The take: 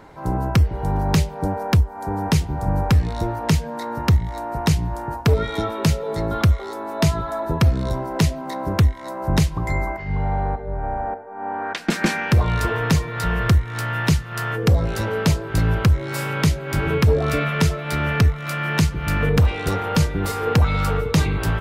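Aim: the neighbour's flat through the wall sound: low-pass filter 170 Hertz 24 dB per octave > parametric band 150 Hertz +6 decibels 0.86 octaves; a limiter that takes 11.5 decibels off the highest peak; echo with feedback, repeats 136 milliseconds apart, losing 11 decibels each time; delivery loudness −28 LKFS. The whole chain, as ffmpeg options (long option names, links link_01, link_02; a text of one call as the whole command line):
ffmpeg -i in.wav -af "alimiter=limit=-19.5dB:level=0:latency=1,lowpass=frequency=170:width=0.5412,lowpass=frequency=170:width=1.3066,equalizer=frequency=150:width_type=o:width=0.86:gain=6,aecho=1:1:136|272|408:0.282|0.0789|0.0221" out.wav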